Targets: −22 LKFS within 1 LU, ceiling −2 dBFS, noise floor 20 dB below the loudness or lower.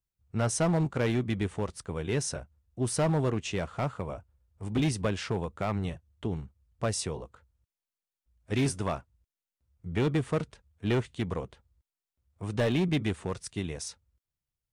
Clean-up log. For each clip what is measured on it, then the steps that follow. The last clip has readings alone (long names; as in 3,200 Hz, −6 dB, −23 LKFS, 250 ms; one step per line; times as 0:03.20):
share of clipped samples 1.8%; peaks flattened at −21.5 dBFS; integrated loudness −31.5 LKFS; sample peak −21.5 dBFS; target loudness −22.0 LKFS
→ clipped peaks rebuilt −21.5 dBFS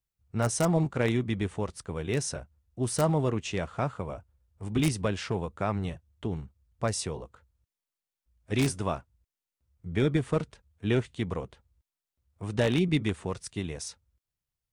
share of clipped samples 0.0%; integrated loudness −30.5 LKFS; sample peak −12.5 dBFS; target loudness −22.0 LKFS
→ level +8.5 dB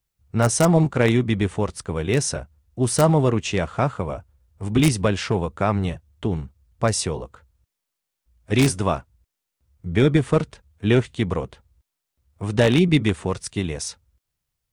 integrated loudness −22.0 LKFS; sample peak −4.0 dBFS; background noise floor −82 dBFS